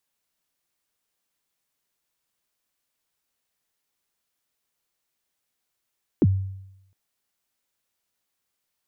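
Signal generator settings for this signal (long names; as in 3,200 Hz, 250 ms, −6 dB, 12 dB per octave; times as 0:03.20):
synth kick length 0.71 s, from 400 Hz, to 96 Hz, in 39 ms, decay 0.85 s, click off, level −12 dB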